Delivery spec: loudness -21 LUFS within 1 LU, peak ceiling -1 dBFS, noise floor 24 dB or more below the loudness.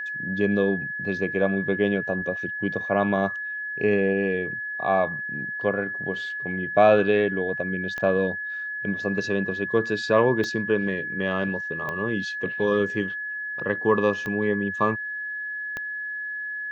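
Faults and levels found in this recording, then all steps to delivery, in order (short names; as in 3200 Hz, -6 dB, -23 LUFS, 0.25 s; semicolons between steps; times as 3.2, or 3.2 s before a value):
clicks 5; steady tone 1700 Hz; tone level -29 dBFS; loudness -25.0 LUFS; peak -6.0 dBFS; loudness target -21.0 LUFS
-> de-click; notch 1700 Hz, Q 30; gain +4 dB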